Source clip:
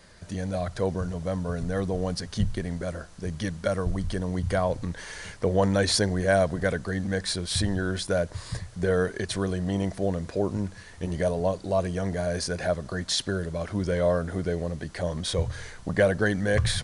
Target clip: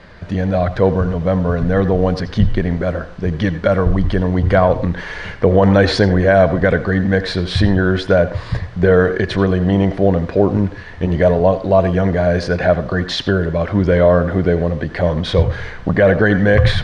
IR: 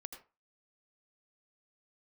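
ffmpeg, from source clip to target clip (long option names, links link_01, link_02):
-filter_complex "[0:a]lowpass=3100,asplit=2[link_01][link_02];[1:a]atrim=start_sample=2205,lowpass=5500[link_03];[link_02][link_03]afir=irnorm=-1:irlink=0,volume=2dB[link_04];[link_01][link_04]amix=inputs=2:normalize=0,alimiter=level_in=9.5dB:limit=-1dB:release=50:level=0:latency=1,volume=-1dB"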